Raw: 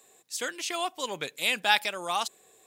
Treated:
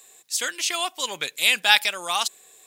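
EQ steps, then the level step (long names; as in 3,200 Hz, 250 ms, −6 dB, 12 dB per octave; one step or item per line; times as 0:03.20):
tilt shelving filter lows −6 dB, about 1,100 Hz
+3.5 dB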